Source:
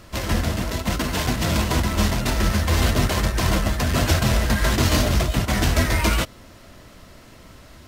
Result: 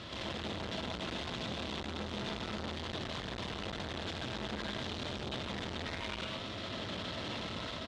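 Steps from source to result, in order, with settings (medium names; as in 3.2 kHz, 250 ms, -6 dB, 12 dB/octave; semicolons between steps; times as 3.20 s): high-pass 93 Hz 12 dB/octave; peaking EQ 3.5 kHz +13.5 dB 0.62 oct; level rider gain up to 6 dB; peak limiter -27 dBFS, peak gain reduction 24.5 dB; wavefolder -31 dBFS; distance through air 120 m; echo from a far wall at 28 m, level -12 dB; reverberation RT60 0.40 s, pre-delay 93 ms, DRR 2 dB; transformer saturation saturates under 910 Hz; trim +1 dB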